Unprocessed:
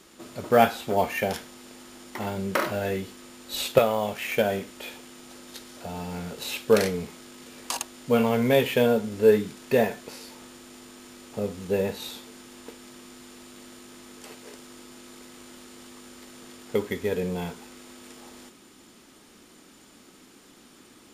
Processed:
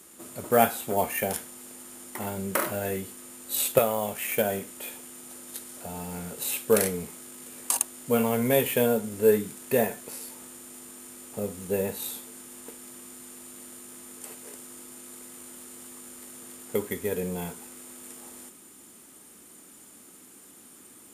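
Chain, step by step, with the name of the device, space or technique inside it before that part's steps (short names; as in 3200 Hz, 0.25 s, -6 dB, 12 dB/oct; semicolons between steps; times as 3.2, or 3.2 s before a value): budget condenser microphone (HPF 60 Hz; resonant high shelf 6900 Hz +11.5 dB, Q 1.5); gain -2.5 dB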